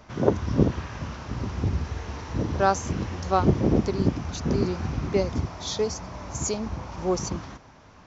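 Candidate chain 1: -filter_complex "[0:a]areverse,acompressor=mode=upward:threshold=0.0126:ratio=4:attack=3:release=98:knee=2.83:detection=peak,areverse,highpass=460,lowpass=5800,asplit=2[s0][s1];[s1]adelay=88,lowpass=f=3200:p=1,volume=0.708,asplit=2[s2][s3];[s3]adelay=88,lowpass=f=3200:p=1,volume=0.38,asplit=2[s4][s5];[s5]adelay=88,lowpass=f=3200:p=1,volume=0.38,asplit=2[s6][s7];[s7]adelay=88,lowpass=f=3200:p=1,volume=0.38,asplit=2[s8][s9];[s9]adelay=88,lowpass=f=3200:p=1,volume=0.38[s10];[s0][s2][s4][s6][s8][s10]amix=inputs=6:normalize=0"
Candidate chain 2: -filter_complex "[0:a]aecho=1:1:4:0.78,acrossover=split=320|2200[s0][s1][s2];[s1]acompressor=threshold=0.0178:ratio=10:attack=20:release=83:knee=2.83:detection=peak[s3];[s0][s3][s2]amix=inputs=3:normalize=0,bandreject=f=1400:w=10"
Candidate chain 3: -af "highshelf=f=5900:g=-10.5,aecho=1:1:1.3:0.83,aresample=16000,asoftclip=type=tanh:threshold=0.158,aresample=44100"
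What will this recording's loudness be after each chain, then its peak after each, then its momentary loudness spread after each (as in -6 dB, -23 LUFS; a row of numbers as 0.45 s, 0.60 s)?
-30.5 LUFS, -28.0 LUFS, -27.5 LUFS; -8.5 dBFS, -9.0 dBFS, -16.0 dBFS; 15 LU, 10 LU, 8 LU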